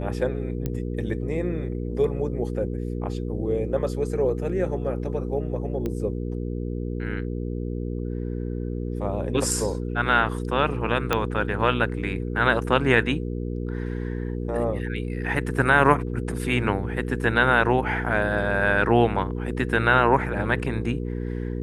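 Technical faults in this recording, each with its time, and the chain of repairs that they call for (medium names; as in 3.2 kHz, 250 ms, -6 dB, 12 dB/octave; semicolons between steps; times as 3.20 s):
hum 60 Hz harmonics 8 -29 dBFS
0.66 s: pop -15 dBFS
5.86 s: pop -17 dBFS
11.13 s: pop -7 dBFS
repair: de-click; de-hum 60 Hz, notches 8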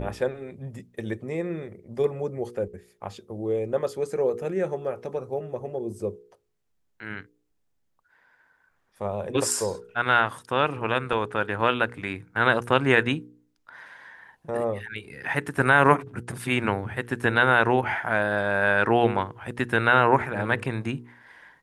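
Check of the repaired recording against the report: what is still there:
0.66 s: pop
11.13 s: pop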